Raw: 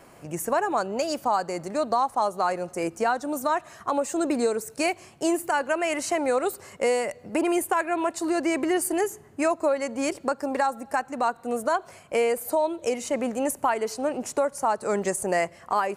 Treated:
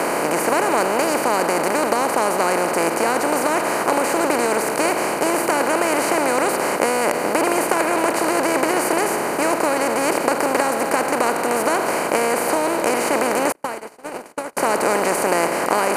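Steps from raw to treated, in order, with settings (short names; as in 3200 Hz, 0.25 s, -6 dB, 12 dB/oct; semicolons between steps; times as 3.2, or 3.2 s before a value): per-bin compression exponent 0.2; 13.52–14.57 gate -12 dBFS, range -40 dB; gain -3.5 dB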